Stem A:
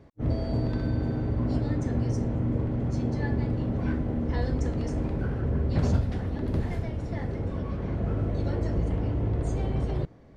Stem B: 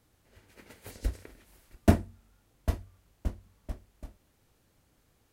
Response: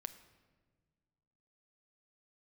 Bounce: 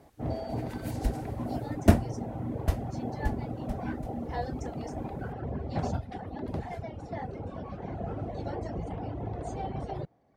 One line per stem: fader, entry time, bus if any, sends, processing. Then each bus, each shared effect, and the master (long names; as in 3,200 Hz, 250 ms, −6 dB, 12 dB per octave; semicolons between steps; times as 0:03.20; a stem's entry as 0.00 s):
−3.0 dB, 0.00 s, no send, reverb reduction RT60 1.1 s; high-pass filter 120 Hz 6 dB per octave; parametric band 760 Hz +12.5 dB 0.44 octaves
+1.5 dB, 0.00 s, no send, no processing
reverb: not used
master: no processing